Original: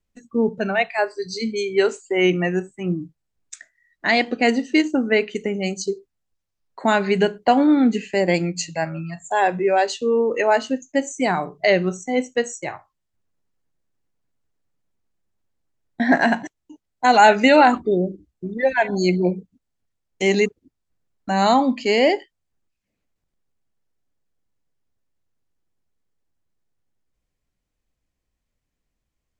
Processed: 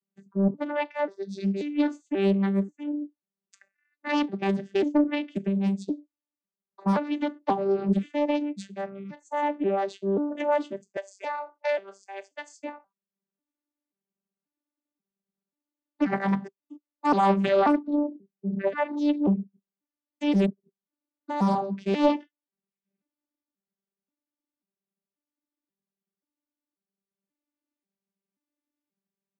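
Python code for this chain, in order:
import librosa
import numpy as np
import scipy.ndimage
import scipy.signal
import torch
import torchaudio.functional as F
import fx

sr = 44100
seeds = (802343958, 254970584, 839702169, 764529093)

y = fx.vocoder_arp(x, sr, chord='bare fifth', root=55, every_ms=535)
y = fx.highpass(y, sr, hz=620.0, slope=24, at=(10.97, 12.63))
y = fx.doppler_dist(y, sr, depth_ms=0.56)
y = y * librosa.db_to_amplitude(-5.5)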